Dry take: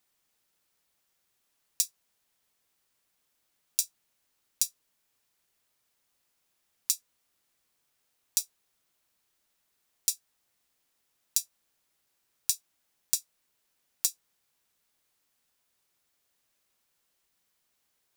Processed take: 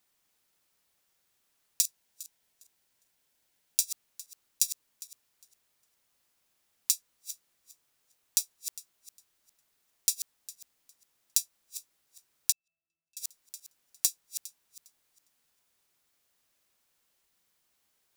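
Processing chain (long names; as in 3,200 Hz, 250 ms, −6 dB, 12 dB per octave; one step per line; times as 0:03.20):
feedback delay that plays each chunk backwards 203 ms, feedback 42%, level −11 dB
0:01.81–0:03.84: notch filter 1,200 Hz, Q 6.9
0:12.52–0:13.17: resonances in every octave E, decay 0.56 s
level +1 dB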